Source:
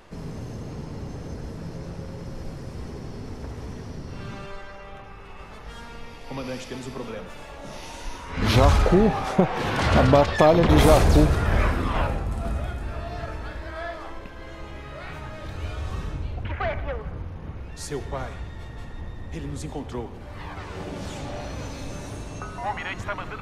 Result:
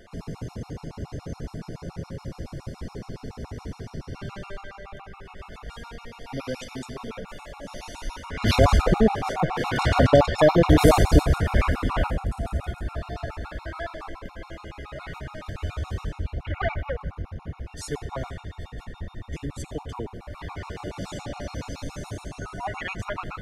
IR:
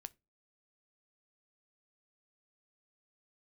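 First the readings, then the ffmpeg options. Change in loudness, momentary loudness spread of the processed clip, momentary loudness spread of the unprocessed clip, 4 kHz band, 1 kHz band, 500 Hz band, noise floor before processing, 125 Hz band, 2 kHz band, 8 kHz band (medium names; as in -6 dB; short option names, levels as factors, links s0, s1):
-1.0 dB, 21 LU, 21 LU, -1.0 dB, -1.5 dB, -0.5 dB, -40 dBFS, -1.0 dB, -1.0 dB, -1.0 dB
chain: -af "afftfilt=real='re*gt(sin(2*PI*7.1*pts/sr)*(1-2*mod(floor(b*sr/1024/720),2)),0)':imag='im*gt(sin(2*PI*7.1*pts/sr)*(1-2*mod(floor(b*sr/1024/720),2)),0)':win_size=1024:overlap=0.75,volume=1.33"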